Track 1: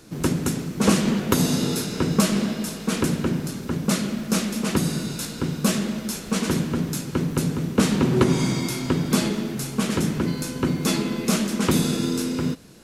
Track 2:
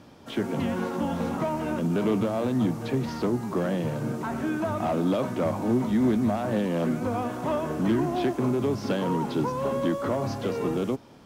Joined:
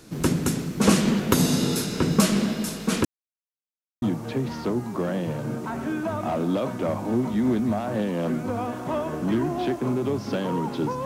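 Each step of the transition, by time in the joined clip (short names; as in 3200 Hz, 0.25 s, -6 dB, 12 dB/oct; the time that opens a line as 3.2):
track 1
3.05–4.02 mute
4.02 switch to track 2 from 2.59 s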